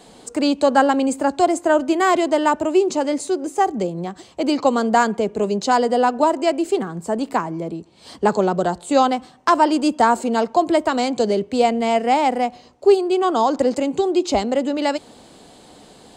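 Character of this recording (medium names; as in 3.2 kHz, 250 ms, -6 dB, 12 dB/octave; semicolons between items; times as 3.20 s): noise floor -47 dBFS; spectral tilt -3.5 dB/octave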